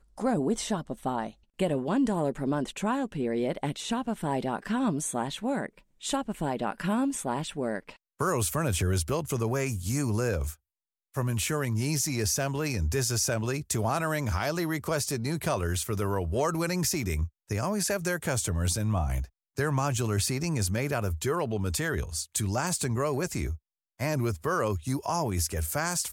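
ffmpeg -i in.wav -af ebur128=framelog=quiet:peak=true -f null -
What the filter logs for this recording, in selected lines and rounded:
Integrated loudness:
  I:         -29.4 LUFS
  Threshold: -39.5 LUFS
Loudness range:
  LRA:         2.2 LU
  Threshold: -49.5 LUFS
  LRA low:   -30.7 LUFS
  LRA high:  -28.5 LUFS
True peak:
  Peak:      -14.0 dBFS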